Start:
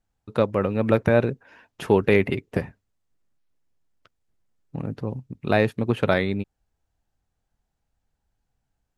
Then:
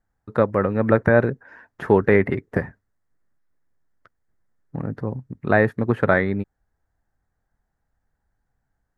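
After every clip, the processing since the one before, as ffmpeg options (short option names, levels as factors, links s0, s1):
-filter_complex "[0:a]highshelf=f=2200:t=q:w=3:g=-6.5,acrossover=split=3800[s0][s1];[s1]acompressor=threshold=0.00158:ratio=4:attack=1:release=60[s2];[s0][s2]amix=inputs=2:normalize=0,volume=1.26"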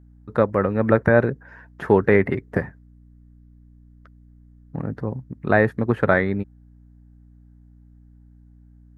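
-af "aeval=exprs='val(0)+0.00398*(sin(2*PI*60*n/s)+sin(2*PI*2*60*n/s)/2+sin(2*PI*3*60*n/s)/3+sin(2*PI*4*60*n/s)/4+sin(2*PI*5*60*n/s)/5)':c=same"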